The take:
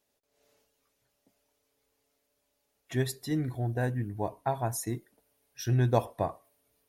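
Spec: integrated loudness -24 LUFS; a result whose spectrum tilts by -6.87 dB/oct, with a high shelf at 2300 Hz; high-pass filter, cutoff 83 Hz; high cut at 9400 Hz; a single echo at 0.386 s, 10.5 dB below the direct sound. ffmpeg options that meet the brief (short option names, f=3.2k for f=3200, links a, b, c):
-af "highpass=83,lowpass=9.4k,highshelf=f=2.3k:g=-8.5,aecho=1:1:386:0.299,volume=8dB"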